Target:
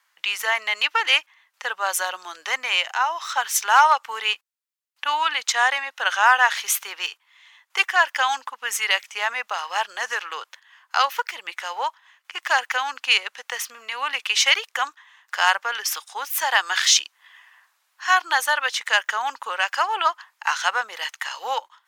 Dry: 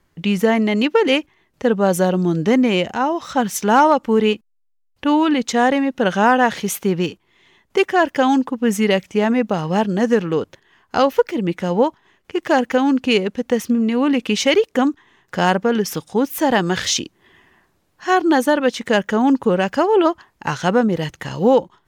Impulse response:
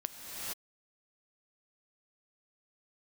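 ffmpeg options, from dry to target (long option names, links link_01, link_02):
-af "highpass=frequency=1000:width=0.5412,highpass=frequency=1000:width=1.3066,volume=3.5dB"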